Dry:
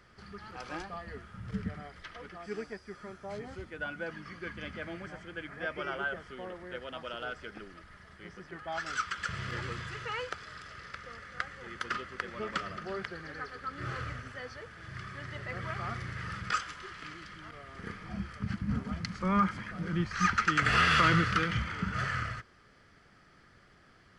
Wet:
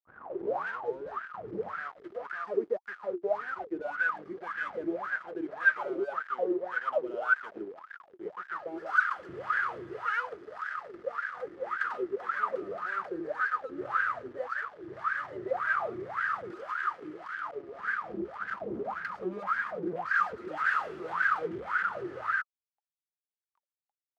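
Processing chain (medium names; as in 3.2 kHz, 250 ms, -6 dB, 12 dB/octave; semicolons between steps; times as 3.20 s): tape start-up on the opening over 1.24 s; fuzz box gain 44 dB, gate -49 dBFS; wah-wah 1.8 Hz 340–1600 Hz, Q 17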